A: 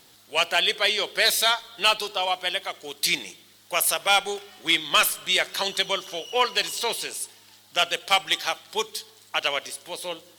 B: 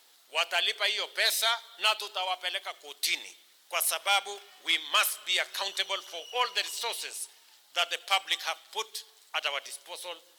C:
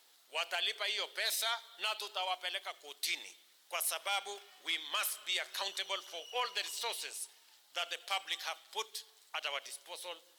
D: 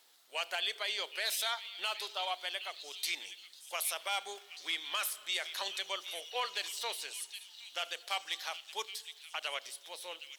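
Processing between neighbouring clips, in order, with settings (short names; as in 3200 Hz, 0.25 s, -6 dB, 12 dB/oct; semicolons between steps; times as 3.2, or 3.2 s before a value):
HPF 570 Hz 12 dB/oct; gain -5.5 dB
limiter -19 dBFS, peak gain reduction 7 dB; gain -5 dB
delay with a stepping band-pass 0.768 s, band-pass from 3100 Hz, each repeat 0.7 oct, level -9 dB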